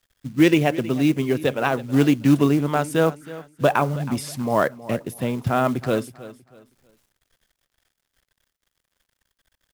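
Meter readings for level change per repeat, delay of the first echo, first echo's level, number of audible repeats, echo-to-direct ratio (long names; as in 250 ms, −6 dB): −10.5 dB, 320 ms, −17.0 dB, 2, −16.5 dB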